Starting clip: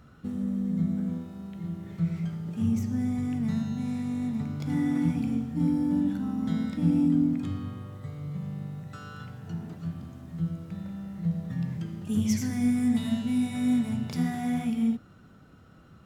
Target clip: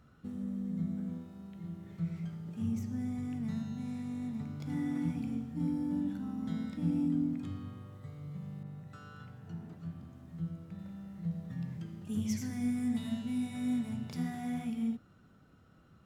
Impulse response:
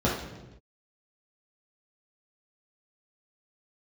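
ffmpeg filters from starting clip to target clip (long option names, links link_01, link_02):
-filter_complex "[0:a]asettb=1/sr,asplit=3[link_01][link_02][link_03];[link_01]atrim=end=8.634[link_04];[link_02]atrim=start=8.63:end=10.79,asetpts=PTS-STARTPTS,afade=type=in:duration=0.004:curve=qsin,afade=type=out:start_time=2.156:duration=0.004:curve=qsin,adynamicequalizer=threshold=0.00112:dfrequency=2700:dqfactor=0.7:tfrequency=2700:tqfactor=0.7:attack=5:release=100:ratio=0.375:range=2:mode=cutabove:tftype=highshelf[link_05];[link_03]atrim=start=10.786[link_06];[link_04][link_05]acrossfade=duration=0.004:curve1=hsin:curve2=qsin[link_07];[link_07][link_06]acrossfade=duration=0.004:curve1=qsin:curve2=hsin,volume=-8dB"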